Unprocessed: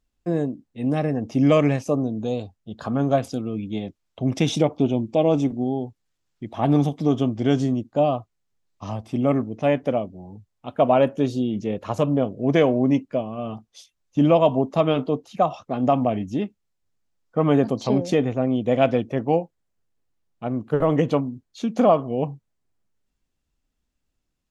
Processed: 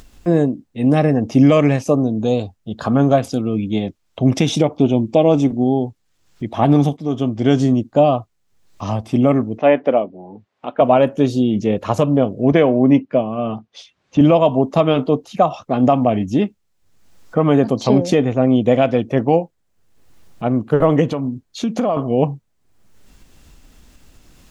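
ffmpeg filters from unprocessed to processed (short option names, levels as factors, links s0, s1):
-filter_complex "[0:a]asettb=1/sr,asplit=3[s0][s1][s2];[s0]atrim=end=9.584[s3];[s1]atrim=start=9.58:end=10.81,asetpts=PTS-STARTPTS,afade=t=in:d=0.004:c=qsin,afade=t=out:st=1.226:d=0.004:c=qsin,highpass=290,lowpass=2800[s4];[s2]atrim=start=10.806[s5];[s3][s4]acrossfade=d=0.004:c1=hsin:c2=qsin[s6];[s6][s5]acrossfade=d=0.004:c1=qsin:c2=hsin,asettb=1/sr,asplit=3[s7][s8][s9];[s7]atrim=end=12.524[s10];[s8]atrim=start=12.52:end=14.21,asetpts=PTS-STARTPTS,afade=t=in:d=0.004:c=qsin,afade=t=out:st=1.686:d=0.004:c=qsin,highpass=110,lowpass=3300[s11];[s9]atrim=start=14.206[s12];[s10][s11]acrossfade=d=0.004:c1=hsin:c2=qsin[s13];[s13][s12]acrossfade=d=0.004:c1=qsin:c2=hsin,asettb=1/sr,asplit=3[s14][s15][s16];[s14]atrim=end=21.114[s17];[s15]atrim=start=21.11:end=21.97,asetpts=PTS-STARTPTS,afade=t=in:d=0.004:c=qsin,afade=t=out:st=0.856:d=0.004:c=qsin,acompressor=threshold=0.0708:ratio=6:attack=3.2:release=140:knee=1:detection=peak[s18];[s16]atrim=start=21.966[s19];[s17][s18]acrossfade=d=0.004:c1=hsin:c2=qsin[s20];[s20][s19]acrossfade=d=0.004:c1=qsin:c2=hsin,asplit=2[s21][s22];[s21]atrim=end=6.97,asetpts=PTS-STARTPTS,afade=t=out:st=6.966:d=0.004:c=hsin:silence=0.223872[s23];[s22]atrim=start=6.97,asetpts=PTS-STARTPTS,afade=t=in:d=0.75:silence=0.223872[s24];[s23][s24]concat=n=2:v=0:a=1,alimiter=limit=0.266:level=0:latency=1:release=388,acompressor=mode=upward:threshold=0.0158:ratio=2.5,volume=2.66"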